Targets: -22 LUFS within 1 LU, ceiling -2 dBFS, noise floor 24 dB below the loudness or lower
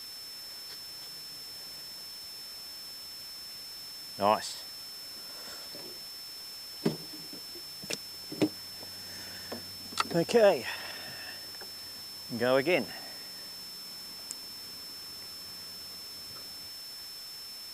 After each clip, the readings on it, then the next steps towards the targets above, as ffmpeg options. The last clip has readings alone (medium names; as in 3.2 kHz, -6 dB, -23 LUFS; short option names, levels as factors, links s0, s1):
steady tone 5.3 kHz; tone level -42 dBFS; noise floor -44 dBFS; noise floor target -59 dBFS; loudness -35.0 LUFS; peak level -11.0 dBFS; loudness target -22.0 LUFS
-> -af "bandreject=f=5300:w=30"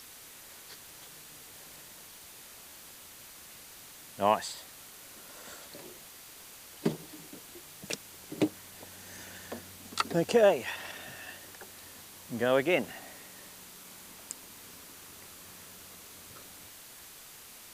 steady tone not found; noise floor -51 dBFS; noise floor target -57 dBFS
-> -af "afftdn=nr=6:nf=-51"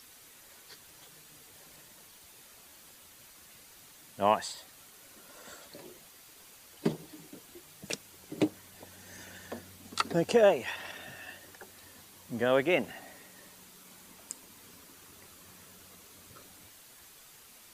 noise floor -55 dBFS; noise floor target -56 dBFS
-> -af "afftdn=nr=6:nf=-55"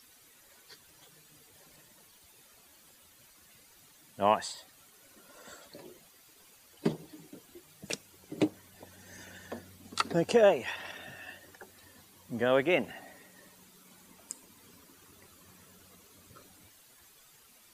noise floor -60 dBFS; loudness -31.0 LUFS; peak level -11.5 dBFS; loudness target -22.0 LUFS
-> -af "volume=2.82"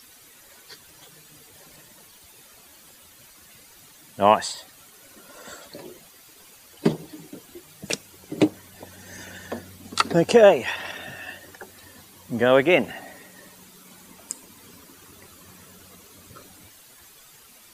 loudness -22.0 LUFS; peak level -2.5 dBFS; noise floor -51 dBFS